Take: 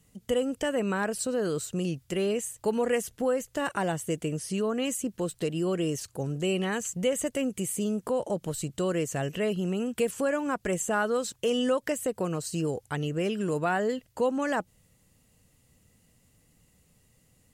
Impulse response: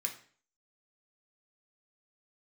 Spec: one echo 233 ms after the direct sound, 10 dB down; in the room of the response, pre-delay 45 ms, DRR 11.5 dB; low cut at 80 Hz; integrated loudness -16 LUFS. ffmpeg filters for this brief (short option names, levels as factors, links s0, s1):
-filter_complex "[0:a]highpass=80,aecho=1:1:233:0.316,asplit=2[s0][s1];[1:a]atrim=start_sample=2205,adelay=45[s2];[s1][s2]afir=irnorm=-1:irlink=0,volume=0.237[s3];[s0][s3]amix=inputs=2:normalize=0,volume=4.47"